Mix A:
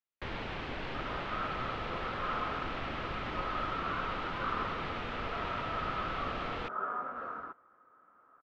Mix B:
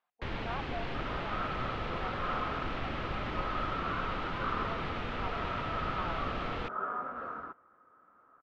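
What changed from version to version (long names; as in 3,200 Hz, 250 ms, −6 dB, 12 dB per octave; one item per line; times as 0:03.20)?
speech: unmuted
master: add low-shelf EQ 270 Hz +4.5 dB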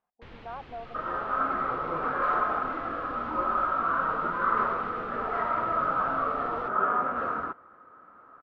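speech: add spectral tilt −4.5 dB per octave
first sound −11.0 dB
second sound +10.0 dB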